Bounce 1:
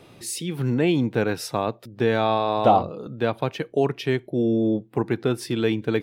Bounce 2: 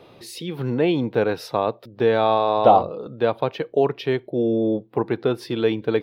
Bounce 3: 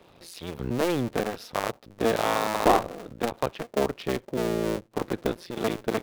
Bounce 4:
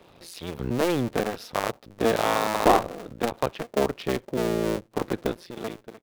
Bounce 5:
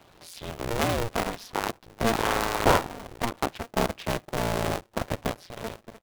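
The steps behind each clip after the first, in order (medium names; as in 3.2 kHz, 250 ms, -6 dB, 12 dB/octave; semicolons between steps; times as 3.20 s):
graphic EQ 500/1000/4000/8000 Hz +7/+5/+6/-11 dB; trim -3 dB
cycle switcher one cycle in 2, muted; trim -3.5 dB
fade out at the end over 0.90 s; trim +1.5 dB
polarity switched at an audio rate 230 Hz; trim -2 dB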